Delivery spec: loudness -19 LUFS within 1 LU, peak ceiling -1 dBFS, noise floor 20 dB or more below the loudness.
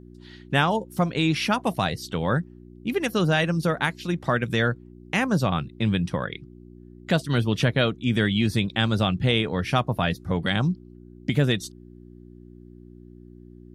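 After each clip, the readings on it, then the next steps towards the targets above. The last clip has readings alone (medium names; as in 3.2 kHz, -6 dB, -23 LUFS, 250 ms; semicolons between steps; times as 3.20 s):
hum 60 Hz; highest harmonic 360 Hz; hum level -47 dBFS; loudness -24.5 LUFS; peak level -8.0 dBFS; loudness target -19.0 LUFS
-> de-hum 60 Hz, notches 6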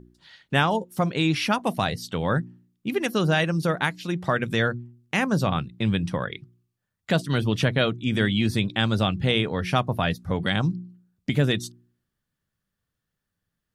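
hum not found; loudness -24.5 LUFS; peak level -7.5 dBFS; loudness target -19.0 LUFS
-> trim +5.5 dB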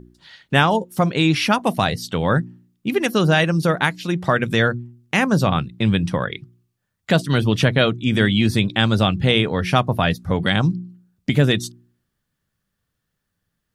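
loudness -19.0 LUFS; peak level -2.0 dBFS; noise floor -77 dBFS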